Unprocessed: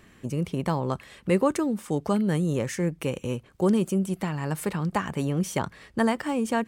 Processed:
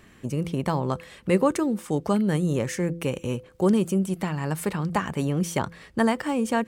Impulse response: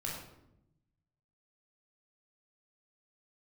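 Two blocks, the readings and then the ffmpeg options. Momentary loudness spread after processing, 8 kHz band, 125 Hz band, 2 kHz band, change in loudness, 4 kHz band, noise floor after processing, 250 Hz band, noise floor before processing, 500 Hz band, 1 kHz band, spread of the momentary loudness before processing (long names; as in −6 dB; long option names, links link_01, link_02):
8 LU, +1.5 dB, +1.0 dB, +1.5 dB, +1.5 dB, +1.5 dB, −53 dBFS, +1.5 dB, −55 dBFS, +1.5 dB, +1.5 dB, 8 LU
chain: -af "bandreject=frequency=168.8:width_type=h:width=4,bandreject=frequency=337.6:width_type=h:width=4,bandreject=frequency=506.4:width_type=h:width=4,volume=1.5dB"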